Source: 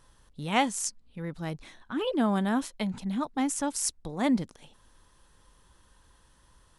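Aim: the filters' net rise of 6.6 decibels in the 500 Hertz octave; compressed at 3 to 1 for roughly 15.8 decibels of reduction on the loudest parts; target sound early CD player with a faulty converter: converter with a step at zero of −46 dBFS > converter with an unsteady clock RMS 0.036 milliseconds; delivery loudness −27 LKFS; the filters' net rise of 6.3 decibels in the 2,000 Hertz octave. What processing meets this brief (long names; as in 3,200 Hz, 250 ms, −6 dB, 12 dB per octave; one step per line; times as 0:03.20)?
parametric band 500 Hz +7.5 dB
parametric band 2,000 Hz +7 dB
downward compressor 3 to 1, threshold −37 dBFS
converter with a step at zero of −46 dBFS
converter with an unsteady clock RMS 0.036 ms
level +10.5 dB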